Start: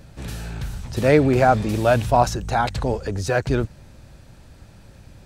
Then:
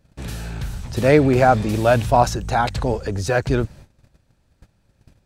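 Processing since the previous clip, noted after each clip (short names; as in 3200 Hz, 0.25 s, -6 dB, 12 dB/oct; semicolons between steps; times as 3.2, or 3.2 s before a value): gate -41 dBFS, range -18 dB; gain +1.5 dB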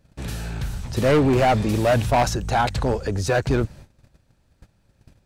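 hard clip -13.5 dBFS, distortion -10 dB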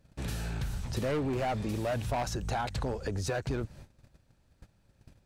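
compressor, threshold -25 dBFS, peak gain reduction 9.5 dB; gain -4.5 dB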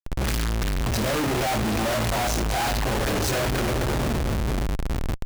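split-band echo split 460 Hz, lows 0.473 s, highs 0.323 s, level -15 dB; two-slope reverb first 0.29 s, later 2 s, DRR -6 dB; Schmitt trigger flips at -45 dBFS; gain +2.5 dB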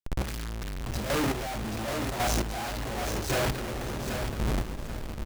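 chopper 0.91 Hz, depth 60%, duty 20%; on a send: feedback echo 0.781 s, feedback 24%, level -7 dB; on the sum: gain -2.5 dB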